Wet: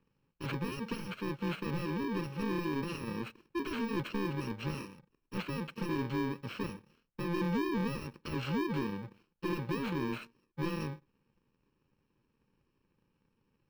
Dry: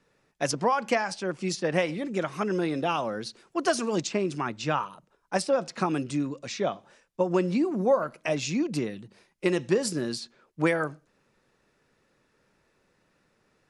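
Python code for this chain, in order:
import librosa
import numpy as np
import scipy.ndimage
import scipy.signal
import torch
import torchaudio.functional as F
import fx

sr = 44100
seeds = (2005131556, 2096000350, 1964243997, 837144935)

y = fx.bit_reversed(x, sr, seeds[0], block=64)
y = 10.0 ** (-26.5 / 20.0) * np.tanh(y / 10.0 ** (-26.5 / 20.0))
y = fx.air_absorb(y, sr, metres=360.0)
y = fx.leveller(y, sr, passes=1)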